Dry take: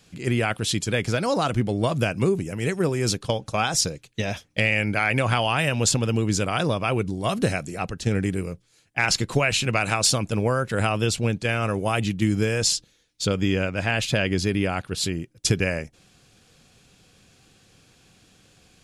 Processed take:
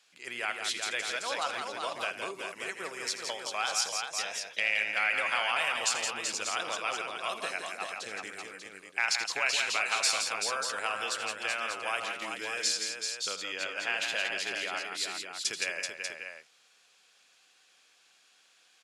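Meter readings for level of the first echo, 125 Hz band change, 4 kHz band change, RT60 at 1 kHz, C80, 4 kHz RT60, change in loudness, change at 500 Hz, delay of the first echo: −13.0 dB, below −35 dB, −4.0 dB, no reverb audible, no reverb audible, no reverb audible, −7.5 dB, −14.0 dB, 83 ms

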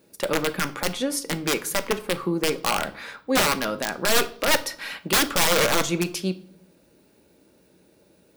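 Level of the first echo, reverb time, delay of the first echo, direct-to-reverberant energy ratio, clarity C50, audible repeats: no echo audible, 0.60 s, no echo audible, 9.0 dB, 16.5 dB, no echo audible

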